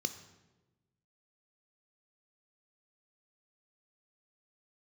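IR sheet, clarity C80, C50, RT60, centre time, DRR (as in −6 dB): 14.0 dB, 12.0 dB, 1.1 s, 12 ms, 9.5 dB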